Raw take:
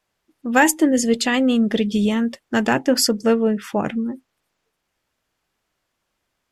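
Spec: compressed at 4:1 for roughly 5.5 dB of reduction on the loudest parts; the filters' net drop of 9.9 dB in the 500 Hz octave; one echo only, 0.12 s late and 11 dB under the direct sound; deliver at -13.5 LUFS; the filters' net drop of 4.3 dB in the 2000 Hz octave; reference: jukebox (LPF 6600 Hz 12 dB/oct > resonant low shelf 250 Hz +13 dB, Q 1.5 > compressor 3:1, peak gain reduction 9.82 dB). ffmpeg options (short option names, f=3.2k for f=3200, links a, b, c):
-af "equalizer=f=500:t=o:g=-8.5,equalizer=f=2k:t=o:g=-4.5,acompressor=threshold=-21dB:ratio=4,lowpass=6.6k,lowshelf=f=250:t=q:w=1.5:g=13,aecho=1:1:120:0.282,acompressor=threshold=-22dB:ratio=3,volume=10.5dB"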